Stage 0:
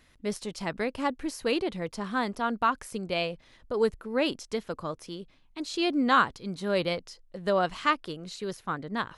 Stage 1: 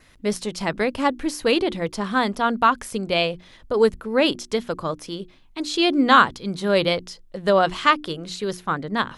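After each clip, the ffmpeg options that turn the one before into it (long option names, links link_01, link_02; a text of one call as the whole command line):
ffmpeg -i in.wav -af "bandreject=frequency=60:width_type=h:width=6,bandreject=frequency=120:width_type=h:width=6,bandreject=frequency=180:width_type=h:width=6,bandreject=frequency=240:width_type=h:width=6,bandreject=frequency=300:width_type=h:width=6,bandreject=frequency=360:width_type=h:width=6,adynamicequalizer=threshold=0.00316:dfrequency=3400:dqfactor=6.8:tfrequency=3400:tqfactor=6.8:attack=5:release=100:ratio=0.375:range=2.5:mode=boostabove:tftype=bell,volume=8dB" out.wav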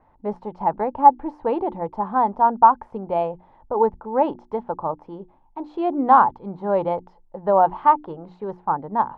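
ffmpeg -i in.wav -af "lowpass=frequency=870:width_type=q:width=10,volume=-5.5dB" out.wav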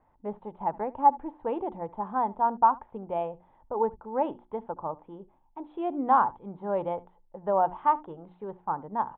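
ffmpeg -i in.wav -af "aecho=1:1:73:0.0794,aresample=8000,aresample=44100,volume=-8dB" out.wav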